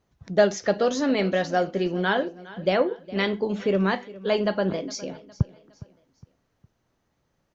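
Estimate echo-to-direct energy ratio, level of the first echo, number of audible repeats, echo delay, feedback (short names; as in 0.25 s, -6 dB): -18.5 dB, -19.0 dB, 3, 0.411 s, 40%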